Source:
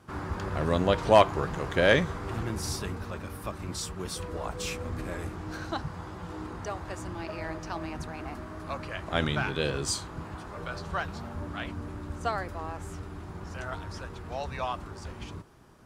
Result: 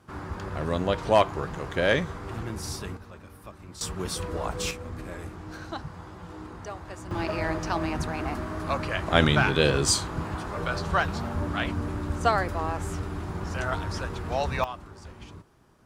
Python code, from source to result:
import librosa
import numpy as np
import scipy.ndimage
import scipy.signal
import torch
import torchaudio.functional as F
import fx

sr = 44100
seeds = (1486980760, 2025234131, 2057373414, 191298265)

y = fx.gain(x, sr, db=fx.steps((0.0, -1.5), (2.97, -8.5), (3.81, 4.0), (4.71, -2.5), (7.11, 7.5), (14.64, -4.0)))